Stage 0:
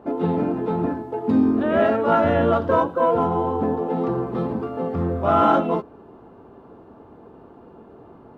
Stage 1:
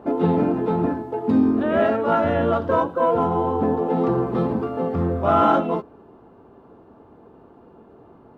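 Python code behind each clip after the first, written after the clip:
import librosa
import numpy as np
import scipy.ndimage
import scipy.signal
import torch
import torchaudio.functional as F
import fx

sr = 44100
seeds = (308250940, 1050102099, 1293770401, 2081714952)

y = fx.rider(x, sr, range_db=10, speed_s=2.0)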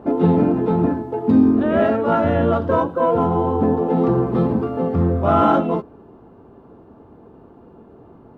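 y = fx.low_shelf(x, sr, hz=340.0, db=6.5)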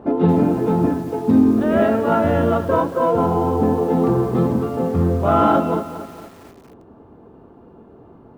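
y = fx.echo_crushed(x, sr, ms=228, feedback_pct=55, bits=6, wet_db=-12.5)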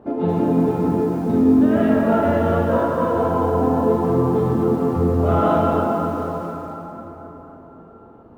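y = fx.rev_plate(x, sr, seeds[0], rt60_s=4.4, hf_ratio=0.55, predelay_ms=0, drr_db=-3.5)
y = F.gain(torch.from_numpy(y), -6.5).numpy()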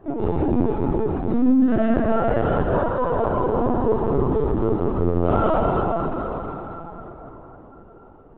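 y = fx.lpc_vocoder(x, sr, seeds[1], excitation='pitch_kept', order=16)
y = F.gain(torch.from_numpy(y), -2.0).numpy()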